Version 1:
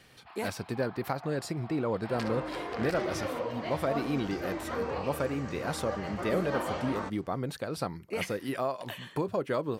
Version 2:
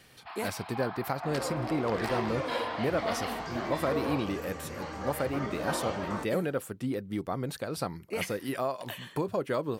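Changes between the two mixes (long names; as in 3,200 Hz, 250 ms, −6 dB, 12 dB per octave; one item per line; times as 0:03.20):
first sound +8.0 dB
second sound: entry −0.85 s
master: add high-shelf EQ 8,600 Hz +7 dB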